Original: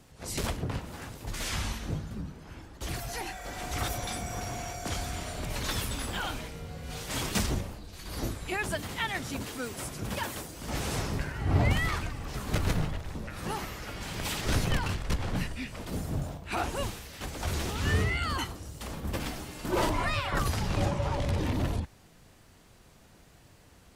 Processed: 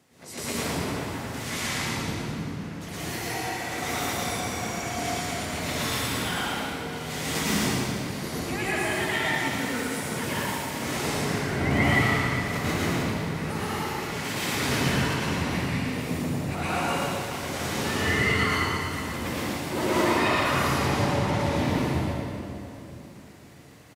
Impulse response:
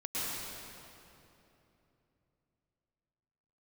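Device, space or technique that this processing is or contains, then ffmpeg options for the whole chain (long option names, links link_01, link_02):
PA in a hall: -filter_complex "[0:a]highpass=150,equalizer=frequency=2000:width_type=o:width=0.24:gain=5,aecho=1:1:115:0.501[link_01];[1:a]atrim=start_sample=2205[link_02];[link_01][link_02]afir=irnorm=-1:irlink=0"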